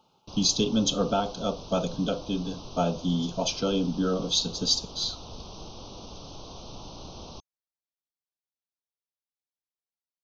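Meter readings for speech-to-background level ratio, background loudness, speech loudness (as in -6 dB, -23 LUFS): 16.0 dB, -43.5 LUFS, -27.5 LUFS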